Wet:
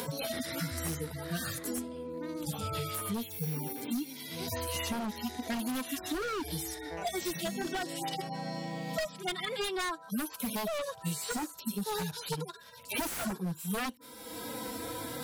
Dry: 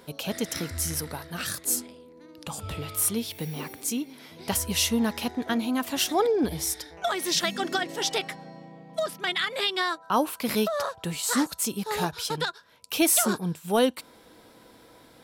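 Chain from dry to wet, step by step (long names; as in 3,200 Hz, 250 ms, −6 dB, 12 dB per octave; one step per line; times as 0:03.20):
harmonic-percussive split with one part muted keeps harmonic
high-shelf EQ 6,600 Hz +11 dB
wave folding −25 dBFS
multiband upward and downward compressor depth 100%
level −3 dB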